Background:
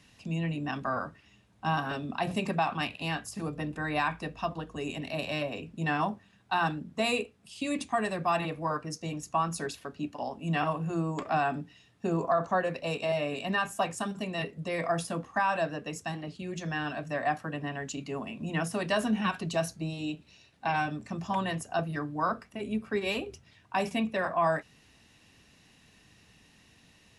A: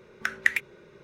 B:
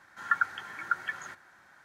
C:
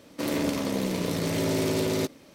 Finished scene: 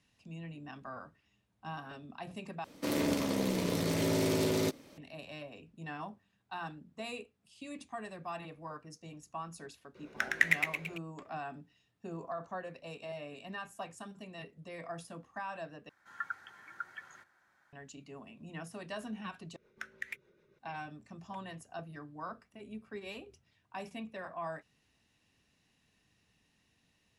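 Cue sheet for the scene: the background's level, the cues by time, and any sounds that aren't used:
background -13.5 dB
2.64 replace with C -4 dB
9.95 add A -4.5 dB + frequency-shifting echo 0.112 s, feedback 54%, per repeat +110 Hz, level -3 dB
15.89 replace with B -12.5 dB
19.56 replace with A -14.5 dB + rotary speaker horn 6.7 Hz

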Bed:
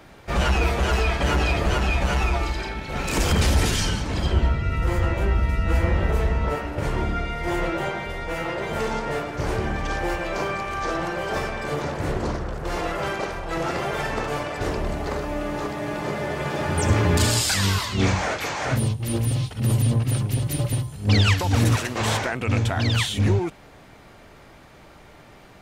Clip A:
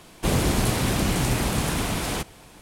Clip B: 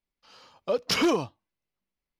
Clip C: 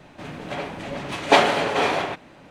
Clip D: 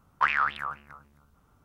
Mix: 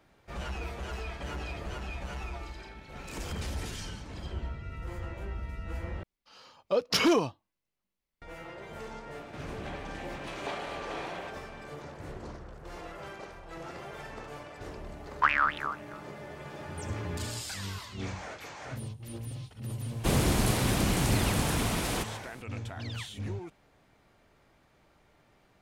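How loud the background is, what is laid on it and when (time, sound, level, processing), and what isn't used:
bed -16.5 dB
6.03 replace with B -0.5 dB
9.15 add C -4 dB + compressor 3:1, threshold -36 dBFS
15.01 add D -0.5 dB
19.81 add A -4 dB

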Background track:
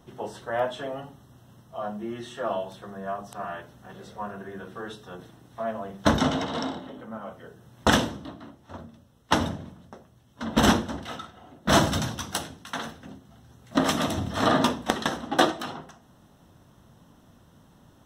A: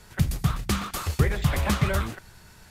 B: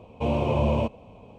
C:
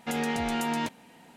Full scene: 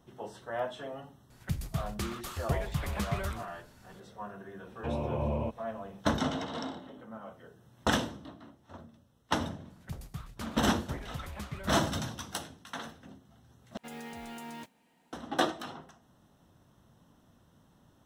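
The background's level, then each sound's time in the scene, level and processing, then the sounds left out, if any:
background track -7.5 dB
1.3 add A -10 dB
4.63 add B -8.5 dB + treble ducked by the level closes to 2000 Hz, closed at -22.5 dBFS
9.7 add A -17.5 dB
13.77 replace with C -14.5 dB + modulation noise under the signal 19 dB

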